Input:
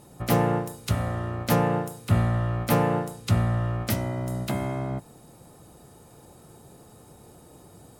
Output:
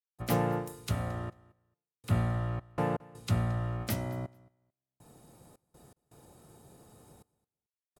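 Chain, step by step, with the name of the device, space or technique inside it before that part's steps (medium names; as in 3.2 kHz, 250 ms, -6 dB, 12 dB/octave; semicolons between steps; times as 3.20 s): trance gate with a delay (trance gate ".xxxxxx....xxx.x" 81 bpm -60 dB; feedback delay 221 ms, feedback 16%, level -23 dB); trim -6.5 dB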